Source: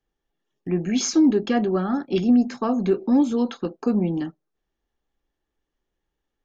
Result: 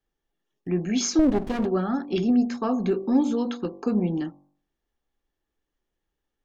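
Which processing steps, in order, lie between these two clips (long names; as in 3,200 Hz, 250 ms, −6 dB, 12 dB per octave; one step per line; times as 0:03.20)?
hum removal 48.05 Hz, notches 24
0:01.19–0:01.66: windowed peak hold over 33 samples
level −1.5 dB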